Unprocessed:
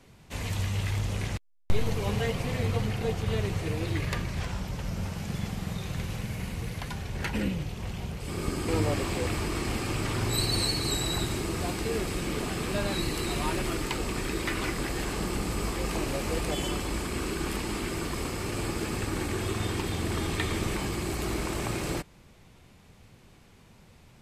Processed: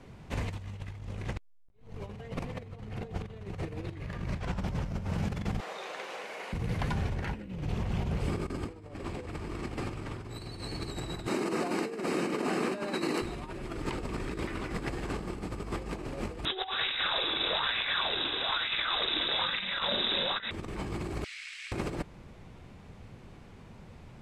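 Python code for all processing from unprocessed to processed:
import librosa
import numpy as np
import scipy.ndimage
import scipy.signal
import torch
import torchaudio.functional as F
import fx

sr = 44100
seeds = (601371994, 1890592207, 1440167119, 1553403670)

y = fx.chain(x, sr, fx.highpass(hz=460.0, slope=24),
    fx.high_shelf(hz=11000.0, db=-10.0), at=(5.6, 6.53))
y = fx.chain(y, sr, fx.highpass(hz=210.0, slope=24),
    fx.notch(hz=3400.0, q=7.0), at=(11.27, 13.22))
y = fx.chain(y, sr, fx.freq_invert(carrier_hz=3800),
    fx.bell_lfo(hz=1.1, low_hz=310.0, high_hz=2300.0, db=13), at=(16.45, 20.51))
y = fx.chain(y, sr, fx.steep_highpass(hz=2000.0, slope=36),
    fx.air_absorb(metres=78.0), at=(21.24, 21.72))
y = scipy.signal.sosfilt(scipy.signal.butter(2, 11000.0, 'lowpass', fs=sr, output='sos'), y)
y = fx.high_shelf(y, sr, hz=2900.0, db=-12.0)
y = fx.over_compress(y, sr, threshold_db=-35.0, ratio=-0.5)
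y = F.gain(torch.from_numpy(y), 1.5).numpy()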